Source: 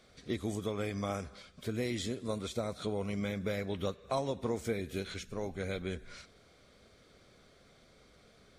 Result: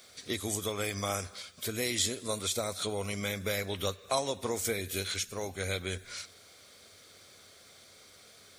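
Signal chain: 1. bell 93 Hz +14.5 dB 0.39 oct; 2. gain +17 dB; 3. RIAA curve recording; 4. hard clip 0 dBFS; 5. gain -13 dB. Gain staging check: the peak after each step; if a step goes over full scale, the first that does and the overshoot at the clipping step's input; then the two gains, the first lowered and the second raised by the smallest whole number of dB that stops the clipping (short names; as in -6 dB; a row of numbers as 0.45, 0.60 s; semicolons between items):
-20.5, -3.5, -2.5, -2.5, -15.5 dBFS; no overload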